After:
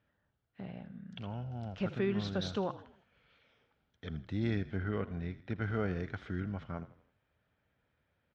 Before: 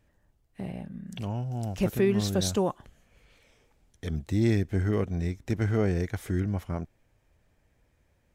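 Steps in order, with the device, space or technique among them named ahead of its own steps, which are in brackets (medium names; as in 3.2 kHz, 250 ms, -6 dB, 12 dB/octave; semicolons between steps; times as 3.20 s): frequency-shifting delay pedal into a guitar cabinet (frequency-shifting echo 81 ms, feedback 48%, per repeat -40 Hz, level -15 dB; cabinet simulation 93–4300 Hz, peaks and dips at 340 Hz -4 dB, 1.4 kHz +9 dB, 3.3 kHz +4 dB); 4.77–5.64 s: low-pass 4.5 kHz 12 dB/octave; trim -7.5 dB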